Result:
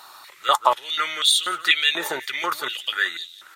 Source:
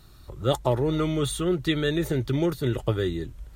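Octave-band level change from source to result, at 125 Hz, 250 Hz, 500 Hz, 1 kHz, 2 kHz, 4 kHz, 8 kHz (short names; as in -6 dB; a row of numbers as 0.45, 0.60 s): under -30 dB, -16.0 dB, -6.0 dB, +12.0 dB, +14.0 dB, +14.5 dB, +10.0 dB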